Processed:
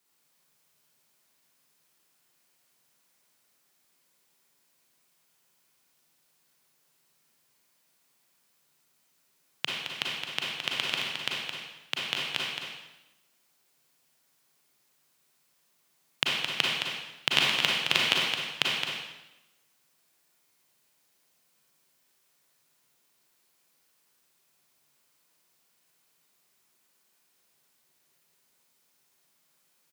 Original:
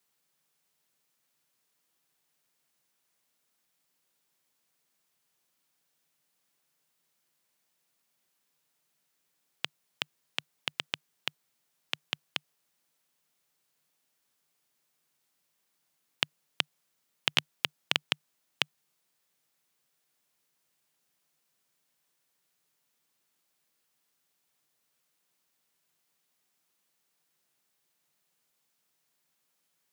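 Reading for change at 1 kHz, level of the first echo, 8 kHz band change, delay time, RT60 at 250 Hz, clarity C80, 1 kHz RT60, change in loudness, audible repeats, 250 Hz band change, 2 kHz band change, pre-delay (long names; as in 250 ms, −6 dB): +7.5 dB, −6.0 dB, +7.0 dB, 217 ms, 1.1 s, 0.5 dB, 0.95 s, +6.0 dB, 1, +7.5 dB, +7.0 dB, 29 ms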